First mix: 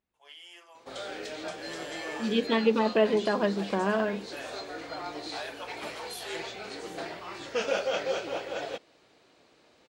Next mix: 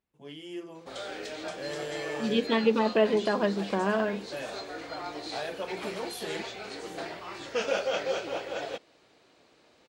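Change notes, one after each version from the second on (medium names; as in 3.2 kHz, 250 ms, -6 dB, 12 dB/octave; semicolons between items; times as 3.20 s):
first voice: remove high-pass 730 Hz 24 dB/octave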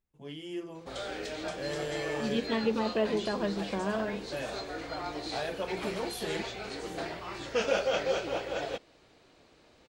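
second voice -6.5 dB; master: remove high-pass 210 Hz 6 dB/octave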